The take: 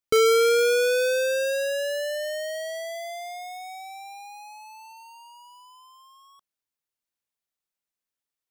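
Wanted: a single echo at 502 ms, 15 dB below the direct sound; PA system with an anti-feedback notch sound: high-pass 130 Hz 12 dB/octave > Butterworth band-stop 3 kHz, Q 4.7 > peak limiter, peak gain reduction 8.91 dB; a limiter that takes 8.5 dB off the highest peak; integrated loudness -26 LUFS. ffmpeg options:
-af "alimiter=level_in=1.19:limit=0.0631:level=0:latency=1,volume=0.841,highpass=130,asuperstop=centerf=3000:order=8:qfactor=4.7,aecho=1:1:502:0.178,volume=2.82,alimiter=limit=0.119:level=0:latency=1"

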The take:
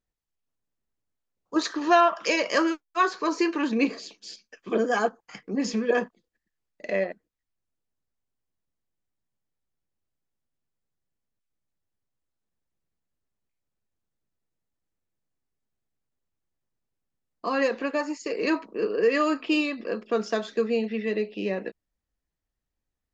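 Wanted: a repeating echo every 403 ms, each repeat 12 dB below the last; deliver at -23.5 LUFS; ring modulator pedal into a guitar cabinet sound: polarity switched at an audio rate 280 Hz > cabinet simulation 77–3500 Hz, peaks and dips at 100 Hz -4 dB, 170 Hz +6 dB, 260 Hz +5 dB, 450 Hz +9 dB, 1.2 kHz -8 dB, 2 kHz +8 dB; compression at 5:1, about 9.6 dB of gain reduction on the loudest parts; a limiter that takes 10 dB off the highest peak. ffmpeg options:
-af "acompressor=threshold=0.0631:ratio=5,alimiter=level_in=1.12:limit=0.0631:level=0:latency=1,volume=0.891,aecho=1:1:403|806|1209:0.251|0.0628|0.0157,aeval=exprs='val(0)*sgn(sin(2*PI*280*n/s))':c=same,highpass=77,equalizer=f=100:t=q:w=4:g=-4,equalizer=f=170:t=q:w=4:g=6,equalizer=f=260:t=q:w=4:g=5,equalizer=f=450:t=q:w=4:g=9,equalizer=f=1200:t=q:w=4:g=-8,equalizer=f=2000:t=q:w=4:g=8,lowpass=f=3500:w=0.5412,lowpass=f=3500:w=1.3066,volume=3.16"

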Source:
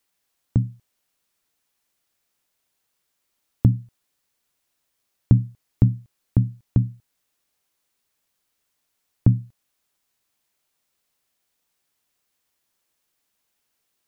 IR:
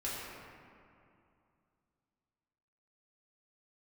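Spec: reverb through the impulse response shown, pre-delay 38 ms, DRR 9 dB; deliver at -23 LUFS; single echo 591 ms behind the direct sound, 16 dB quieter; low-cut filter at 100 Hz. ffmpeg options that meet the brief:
-filter_complex "[0:a]highpass=100,aecho=1:1:591:0.158,asplit=2[s0][s1];[1:a]atrim=start_sample=2205,adelay=38[s2];[s1][s2]afir=irnorm=-1:irlink=0,volume=0.224[s3];[s0][s3]amix=inputs=2:normalize=0,volume=1.5"

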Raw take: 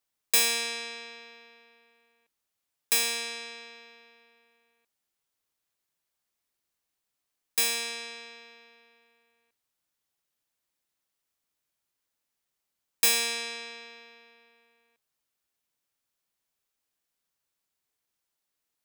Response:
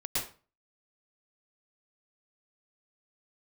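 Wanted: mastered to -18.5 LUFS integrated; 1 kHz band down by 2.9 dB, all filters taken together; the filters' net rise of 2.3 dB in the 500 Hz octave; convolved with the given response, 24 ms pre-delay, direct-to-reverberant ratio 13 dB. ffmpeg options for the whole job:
-filter_complex "[0:a]equalizer=f=500:t=o:g=3.5,equalizer=f=1000:t=o:g=-5,asplit=2[s0][s1];[1:a]atrim=start_sample=2205,adelay=24[s2];[s1][s2]afir=irnorm=-1:irlink=0,volume=0.119[s3];[s0][s3]amix=inputs=2:normalize=0,volume=2.51"

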